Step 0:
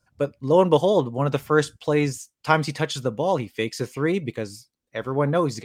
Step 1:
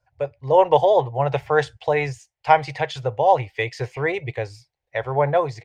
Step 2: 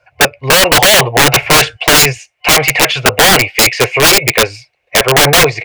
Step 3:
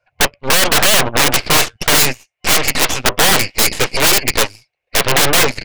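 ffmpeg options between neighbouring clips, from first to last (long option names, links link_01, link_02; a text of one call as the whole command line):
ffmpeg -i in.wav -af "firequalizer=gain_entry='entry(130,0);entry(190,-28);entry(390,-6);entry(780,8);entry(1200,-9);entry(1900,3);entry(3300,-5);entry(11000,-22)':delay=0.05:min_phase=1,dynaudnorm=framelen=120:gausssize=7:maxgain=5dB" out.wav
ffmpeg -i in.wav -filter_complex "[0:a]superequalizer=9b=0.501:12b=2.82,asplit=2[link_01][link_02];[link_02]highpass=frequency=720:poles=1,volume=21dB,asoftclip=type=tanh:threshold=-3dB[link_03];[link_01][link_03]amix=inputs=2:normalize=0,lowpass=frequency=1800:poles=1,volume=-6dB,aeval=exprs='(mod(3.55*val(0)+1,2)-1)/3.55':channel_layout=same,volume=9dB" out.wav
ffmpeg -i in.wav -af "aeval=exprs='0.794*(cos(1*acos(clip(val(0)/0.794,-1,1)))-cos(1*PI/2))+0.158*(cos(3*acos(clip(val(0)/0.794,-1,1)))-cos(3*PI/2))+0.282*(cos(6*acos(clip(val(0)/0.794,-1,1)))-cos(6*PI/2))':channel_layout=same,volume=-5dB" out.wav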